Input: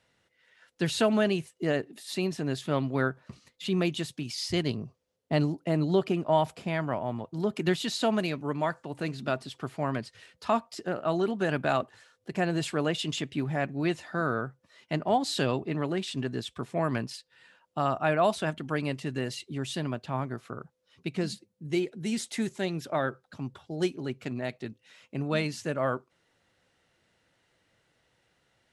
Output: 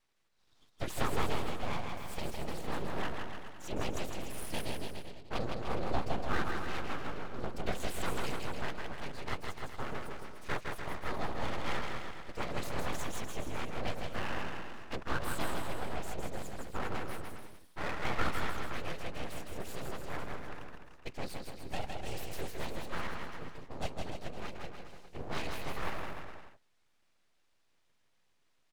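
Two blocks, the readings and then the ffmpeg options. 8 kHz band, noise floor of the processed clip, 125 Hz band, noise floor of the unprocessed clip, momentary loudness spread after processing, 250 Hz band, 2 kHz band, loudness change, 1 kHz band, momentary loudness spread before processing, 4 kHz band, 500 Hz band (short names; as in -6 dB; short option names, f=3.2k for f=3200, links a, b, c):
-5.5 dB, -71 dBFS, -10.0 dB, -74 dBFS, 9 LU, -13.0 dB, -5.0 dB, -9.5 dB, -6.0 dB, 11 LU, -8.0 dB, -11.5 dB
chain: -af "afftfilt=real='hypot(re,im)*cos(2*PI*random(0))':imag='hypot(re,im)*sin(2*PI*random(1))':win_size=512:overlap=0.75,aeval=exprs='abs(val(0))':c=same,aecho=1:1:160|296|411.6|509.9|593.4:0.631|0.398|0.251|0.158|0.1,volume=-1dB"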